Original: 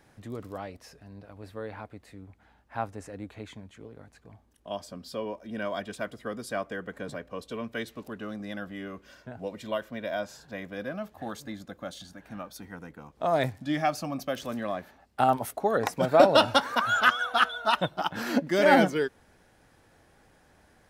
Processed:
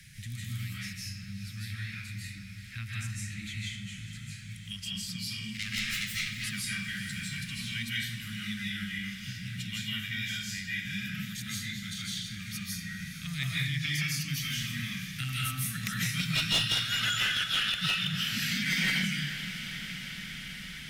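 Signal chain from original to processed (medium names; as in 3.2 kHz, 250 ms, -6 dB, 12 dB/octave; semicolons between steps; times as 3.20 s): 5.44–6.28 s: self-modulated delay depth 0.8 ms; elliptic band-stop 160–2100 Hz, stop band 50 dB; in parallel at -0.5 dB: compression, threshold -38 dBFS, peak gain reduction 15 dB; on the sum: algorithmic reverb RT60 0.72 s, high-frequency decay 0.85×, pre-delay 120 ms, DRR -7 dB; one-sided clip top -20.5 dBFS; on a send: echo that smears into a reverb 453 ms, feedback 73%, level -14.5 dB; on the sum: three bands compressed up and down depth 40%; trim -2.5 dB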